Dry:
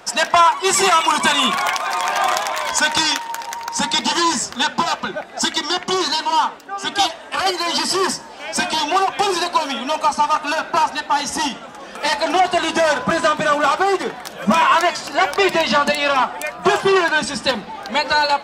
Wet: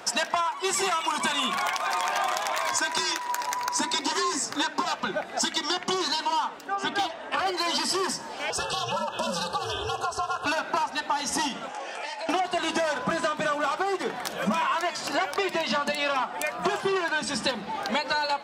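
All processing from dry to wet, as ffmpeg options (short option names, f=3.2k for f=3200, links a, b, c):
-filter_complex "[0:a]asettb=1/sr,asplit=3[a][b][c];[a]atrim=end=2.584[d];[b]atrim=start=2.58:end=4.85,asetpts=PTS-STARTPTS,afade=t=in:d=0.004:c=qsin,afade=t=out:st=2.266:d=0.004:c=qsin,equalizer=f=3.1k:t=o:w=0.26:g=-7,afreqshift=50[e];[c]atrim=start=4.846[f];[d][e]acrossfade=d=0.004:c1=hsin:c2=qsin[g];[g][f]acrossfade=d=0.004:c1=qsin:c2=hsin,asettb=1/sr,asplit=3[h][i][j];[h]atrim=end=6.754[k];[i]atrim=start=6.75:end=7.57,asetpts=PTS-STARTPTS,afade=t=in:d=0.004:c=qsin,afade=t=out:st=0.816:d=0.004:c=qsin,lowpass=f=2.4k:p=1,aeval=exprs='clip(val(0),-1,0.168)':c=same[l];[j]atrim=start=7.566[m];[k][l]acrossfade=d=0.004:c1=hsin:c2=qsin[n];[n][m]acrossfade=d=0.004:c1=qsin:c2=hsin,asettb=1/sr,asplit=3[o][p][q];[o]atrim=end=8.504[r];[p]atrim=start=8.5:end=10.46,asetpts=PTS-STARTPTS,afade=t=in:d=0.004:c=qsin,afade=t=out:st=1.956:d=0.004:c=qsin,acompressor=threshold=-24dB:ratio=2:attack=3.2:release=140:knee=1:detection=peak,aeval=exprs='val(0)*sin(2*PI*170*n/s)':c=same,asuperstop=centerf=2100:order=20:qfactor=2.7[s];[q]atrim=start=10.456[t];[r][s]acrossfade=d=0.004:c1=hsin:c2=qsin[u];[u][t]acrossfade=d=0.004:c1=qsin:c2=hsin,asettb=1/sr,asplit=3[v][w][x];[v]atrim=end=11.684[y];[w]atrim=start=11.68:end=12.29,asetpts=PTS-STARTPTS,afade=t=in:d=0.004:c=qsin,afade=t=out:st=0.606:d=0.004:c=qsin,acompressor=threshold=-31dB:ratio=16:attack=3.2:release=140:knee=1:detection=peak,highpass=470,equalizer=f=760:t=q:w=4:g=5,equalizer=f=1.2k:t=q:w=4:g=-7,equalizer=f=2.6k:t=q:w=4:g=4,equalizer=f=3.8k:t=q:w=4:g=-6,lowpass=f=9k:w=0.5412,lowpass=f=9k:w=1.3066,asplit=2[z][aa];[aa]adelay=20,volume=-6.5dB[ab];[z][ab]amix=inputs=2:normalize=0,atrim=end_sample=26901[ac];[x]atrim=start=12.286[ad];[y][ac]acrossfade=d=0.004:c1=hsin:c2=qsin[ae];[ae][ad]acrossfade=d=0.004:c1=qsin:c2=hsin,highpass=74,bandreject=f=50:t=h:w=6,bandreject=f=100:t=h:w=6,bandreject=f=150:t=h:w=6,bandreject=f=200:t=h:w=6,acompressor=threshold=-24dB:ratio=6"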